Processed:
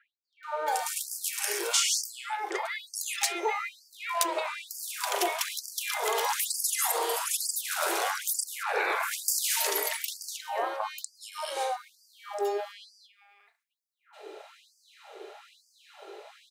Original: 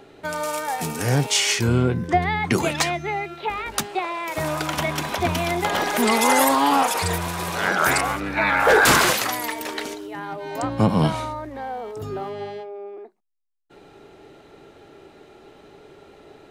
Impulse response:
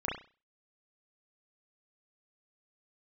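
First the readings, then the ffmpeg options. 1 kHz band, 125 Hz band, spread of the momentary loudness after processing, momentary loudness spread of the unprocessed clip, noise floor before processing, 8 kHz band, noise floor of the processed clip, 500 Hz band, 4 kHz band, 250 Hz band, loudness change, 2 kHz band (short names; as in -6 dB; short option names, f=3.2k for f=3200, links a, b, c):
-9.5 dB, under -40 dB, 18 LU, 15 LU, -49 dBFS, -1.5 dB, -75 dBFS, -10.0 dB, -6.0 dB, -22.0 dB, -8.0 dB, -11.0 dB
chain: -filter_complex "[0:a]acrossover=split=490|6300[a][b][c];[a]acompressor=threshold=-36dB:ratio=4[d];[b]acompressor=threshold=-32dB:ratio=4[e];[c]acompressor=threshold=-30dB:ratio=4[f];[d][e][f]amix=inputs=3:normalize=0,acrossover=split=1600[g][h];[h]adelay=430[i];[g][i]amix=inputs=2:normalize=0,asplit=2[j][k];[1:a]atrim=start_sample=2205[l];[k][l]afir=irnorm=-1:irlink=0,volume=-11dB[m];[j][m]amix=inputs=2:normalize=0,afftfilt=real='re*gte(b*sr/1024,310*pow(4600/310,0.5+0.5*sin(2*PI*1.1*pts/sr)))':imag='im*gte(b*sr/1024,310*pow(4600/310,0.5+0.5*sin(2*PI*1.1*pts/sr)))':win_size=1024:overlap=0.75,volume=1.5dB"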